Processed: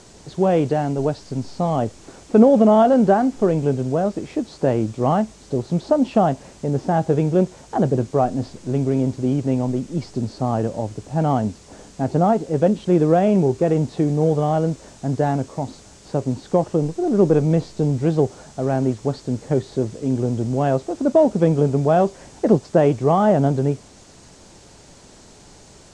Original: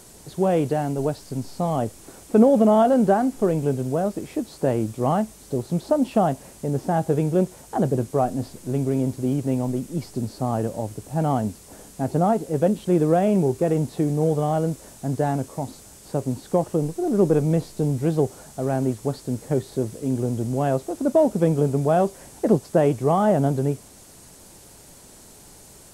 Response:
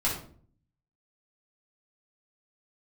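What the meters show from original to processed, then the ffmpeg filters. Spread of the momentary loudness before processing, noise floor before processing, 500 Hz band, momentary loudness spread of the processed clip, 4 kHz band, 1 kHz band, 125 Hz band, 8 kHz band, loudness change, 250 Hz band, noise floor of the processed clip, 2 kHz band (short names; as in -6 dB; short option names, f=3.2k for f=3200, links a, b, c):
11 LU, -47 dBFS, +3.0 dB, 10 LU, +3.0 dB, +3.0 dB, +3.0 dB, -2.5 dB, +3.0 dB, +3.0 dB, -47 dBFS, +3.0 dB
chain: -af "lowpass=f=7k:w=0.5412,lowpass=f=7k:w=1.3066,volume=3dB"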